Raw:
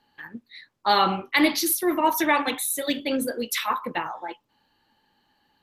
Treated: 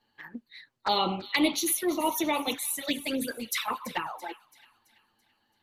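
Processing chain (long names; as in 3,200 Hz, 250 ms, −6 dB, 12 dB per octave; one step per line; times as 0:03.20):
flanger swept by the level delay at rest 9.2 ms, full sweep at −20.5 dBFS
harmonic and percussive parts rebalanced harmonic −4 dB
delay with a high-pass on its return 334 ms, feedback 44%, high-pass 2,100 Hz, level −14 dB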